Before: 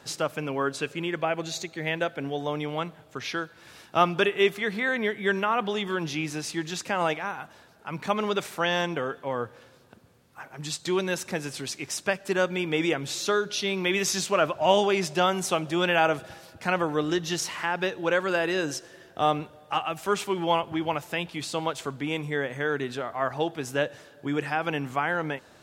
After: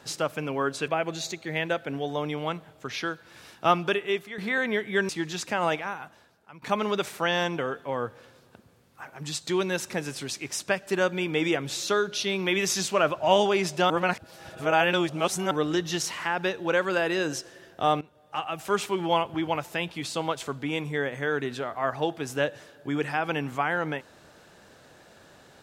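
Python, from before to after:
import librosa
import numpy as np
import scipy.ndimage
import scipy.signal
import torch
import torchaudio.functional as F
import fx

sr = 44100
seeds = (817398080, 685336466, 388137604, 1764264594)

y = fx.edit(x, sr, fx.cut(start_s=0.88, length_s=0.31),
    fx.fade_out_to(start_s=3.98, length_s=0.71, floor_db=-11.5),
    fx.cut(start_s=5.4, length_s=1.07),
    fx.fade_out_to(start_s=7.16, length_s=0.84, floor_db=-18.5),
    fx.reverse_span(start_s=15.28, length_s=1.61),
    fx.fade_in_from(start_s=19.39, length_s=0.66, floor_db=-17.5), tone=tone)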